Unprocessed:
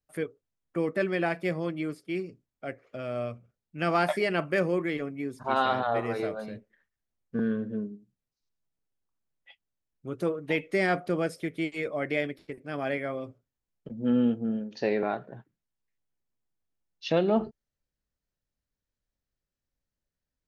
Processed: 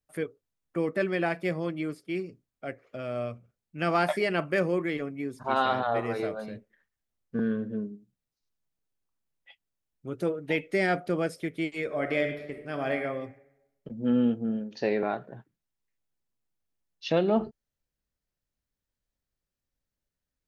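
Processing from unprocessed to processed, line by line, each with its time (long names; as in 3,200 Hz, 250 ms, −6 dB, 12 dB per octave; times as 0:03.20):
0:10.10–0:11.10: notch filter 1,100 Hz, Q 6.5
0:11.84–0:13.03: thrown reverb, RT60 0.96 s, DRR 5.5 dB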